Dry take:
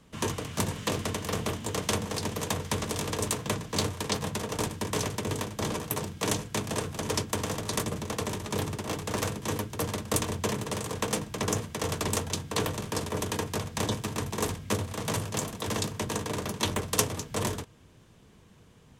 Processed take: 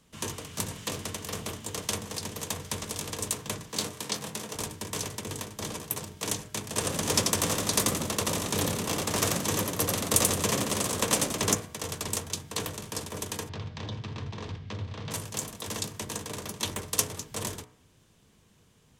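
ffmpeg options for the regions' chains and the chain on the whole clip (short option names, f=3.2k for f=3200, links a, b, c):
-filter_complex "[0:a]asettb=1/sr,asplit=3[a][b][c];[a]atrim=end=3.704[d];[b]atrim=start=3.7:end=4.55,asetpts=PTS-STARTPTS,afade=t=in:d=0.004:c=qsin,afade=t=out:st=0.846:d=0.004:c=qsin,highpass=f=120:w=0.5412,highpass=f=120:w=1.3066,asplit=2[e][f];[f]adelay=23,volume=-9dB[g];[e][g]amix=inputs=2:normalize=0,atrim=end_sample=37485[h];[c]atrim=start=4.546[i];[d][h]acrossfade=d=0.004:c1=hsin:c2=qsin[j];[j][i]acrossfade=d=0.004:c1=qsin:c2=hsin,asettb=1/sr,asplit=3[k][l][m];[k]atrim=end=6.764[n];[l]atrim=start=6.76:end=11.55,asetpts=PTS-STARTPTS,afade=t=in:d=0.004:c=qsin,afade=t=out:st=4.786:d=0.004:c=qsin,acontrast=55,asplit=5[o][p][q][r][s];[p]adelay=87,afreqshift=77,volume=-3dB[t];[q]adelay=174,afreqshift=154,volume=-12.6dB[u];[r]adelay=261,afreqshift=231,volume=-22.3dB[v];[s]adelay=348,afreqshift=308,volume=-31.9dB[w];[o][t][u][v][w]amix=inputs=5:normalize=0,atrim=end_sample=211239[x];[m]atrim=start=11.546[y];[n][x]acrossfade=d=0.004:c1=hsin:c2=qsin[z];[z][y]acrossfade=d=0.004:c1=qsin:c2=hsin,asettb=1/sr,asplit=3[aa][ab][ac];[aa]atrim=end=13.494[ad];[ab]atrim=start=13.49:end=15.11,asetpts=PTS-STARTPTS,afade=t=in:d=0.004:c=qsin,afade=t=out:st=1.616:d=0.004:c=qsin,acompressor=threshold=-30dB:ratio=3:attack=3.2:release=140:knee=1:detection=peak,lowpass=f=4.4k:w=0.5412,lowpass=f=4.4k:w=1.3066,equalizer=f=110:w=1.3:g=8.5[ae];[ac]atrim=start=15.106[af];[ad][ae]acrossfade=d=0.004:c1=hsin:c2=qsin[ag];[ag][af]acrossfade=d=0.004:c1=qsin:c2=hsin,highshelf=f=3.4k:g=8,bandreject=f=61.16:t=h:w=4,bandreject=f=122.32:t=h:w=4,bandreject=f=183.48:t=h:w=4,bandreject=f=244.64:t=h:w=4,bandreject=f=305.8:t=h:w=4,bandreject=f=366.96:t=h:w=4,bandreject=f=428.12:t=h:w=4,bandreject=f=489.28:t=h:w=4,bandreject=f=550.44:t=h:w=4,bandreject=f=611.6:t=h:w=4,bandreject=f=672.76:t=h:w=4,bandreject=f=733.92:t=h:w=4,bandreject=f=795.08:t=h:w=4,bandreject=f=856.24:t=h:w=4,bandreject=f=917.4:t=h:w=4,bandreject=f=978.56:t=h:w=4,bandreject=f=1.03972k:t=h:w=4,bandreject=f=1.10088k:t=h:w=4,bandreject=f=1.16204k:t=h:w=4,bandreject=f=1.2232k:t=h:w=4,bandreject=f=1.28436k:t=h:w=4,bandreject=f=1.34552k:t=h:w=4,bandreject=f=1.40668k:t=h:w=4,bandreject=f=1.46784k:t=h:w=4,bandreject=f=1.529k:t=h:w=4,bandreject=f=1.59016k:t=h:w=4,bandreject=f=1.65132k:t=h:w=4,bandreject=f=1.71248k:t=h:w=4,bandreject=f=1.77364k:t=h:w=4,bandreject=f=1.8348k:t=h:w=4,bandreject=f=1.89596k:t=h:w=4,bandreject=f=1.95712k:t=h:w=4,bandreject=f=2.01828k:t=h:w=4,bandreject=f=2.07944k:t=h:w=4,bandreject=f=2.1406k:t=h:w=4,bandreject=f=2.20176k:t=h:w=4,bandreject=f=2.26292k:t=h:w=4,bandreject=f=2.32408k:t=h:w=4,bandreject=f=2.38524k:t=h:w=4,volume=-6dB"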